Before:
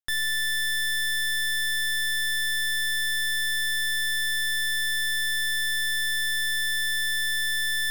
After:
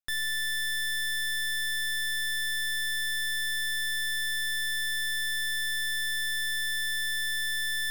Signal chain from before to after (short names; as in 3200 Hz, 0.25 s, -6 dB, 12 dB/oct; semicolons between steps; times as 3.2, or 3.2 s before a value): notch 890 Hz, Q 15; gain -4 dB